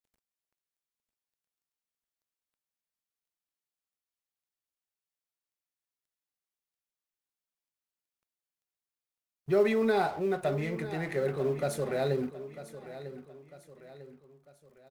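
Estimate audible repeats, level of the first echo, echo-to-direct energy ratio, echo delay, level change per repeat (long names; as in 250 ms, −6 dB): 3, −14.0 dB, −13.0 dB, 948 ms, −7.0 dB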